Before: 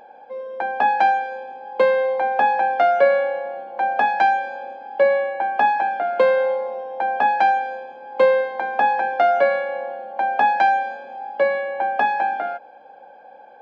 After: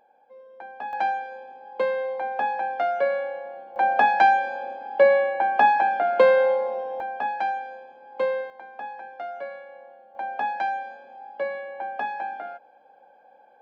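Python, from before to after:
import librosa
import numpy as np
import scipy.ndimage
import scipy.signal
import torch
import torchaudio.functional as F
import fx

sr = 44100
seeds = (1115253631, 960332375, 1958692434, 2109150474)

y = fx.gain(x, sr, db=fx.steps((0.0, -16.0), (0.93, -8.0), (3.76, 0.0), (7.0, -9.5), (8.5, -18.0), (10.15, -10.0)))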